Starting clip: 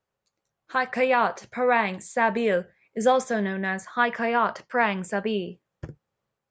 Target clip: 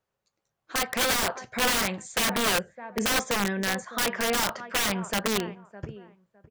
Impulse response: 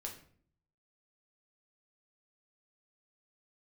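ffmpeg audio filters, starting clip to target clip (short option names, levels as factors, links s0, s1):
-filter_complex "[0:a]asplit=2[s0][s1];[s1]adelay=609,lowpass=f=2000:p=1,volume=0.126,asplit=2[s2][s3];[s3]adelay=609,lowpass=f=2000:p=1,volume=0.2[s4];[s0][s2][s4]amix=inputs=3:normalize=0,aeval=exprs='(mod(8.91*val(0)+1,2)-1)/8.91':c=same"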